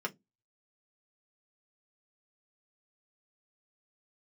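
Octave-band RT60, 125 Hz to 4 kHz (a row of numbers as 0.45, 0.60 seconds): 0.25, 0.30, 0.20, 0.15, 0.10, 0.15 seconds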